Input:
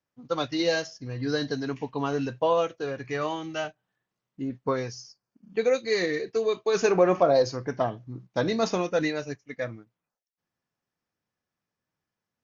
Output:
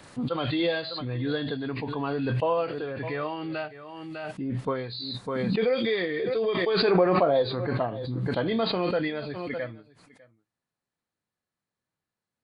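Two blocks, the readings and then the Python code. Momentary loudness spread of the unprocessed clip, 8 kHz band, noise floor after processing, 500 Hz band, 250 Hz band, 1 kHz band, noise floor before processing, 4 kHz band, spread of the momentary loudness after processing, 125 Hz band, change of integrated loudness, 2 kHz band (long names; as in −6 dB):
14 LU, can't be measured, below −85 dBFS, −1.0 dB, +1.5 dB, −0.5 dB, below −85 dBFS, +2.5 dB, 12 LU, +4.5 dB, −0.5 dB, 0.0 dB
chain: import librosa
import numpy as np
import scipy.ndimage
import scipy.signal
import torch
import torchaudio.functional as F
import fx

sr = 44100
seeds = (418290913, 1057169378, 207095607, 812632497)

p1 = fx.freq_compress(x, sr, knee_hz=2400.0, ratio=1.5)
p2 = p1 + fx.echo_single(p1, sr, ms=602, db=-22.5, dry=0)
p3 = fx.pre_swell(p2, sr, db_per_s=21.0)
y = p3 * librosa.db_to_amplitude(-2.5)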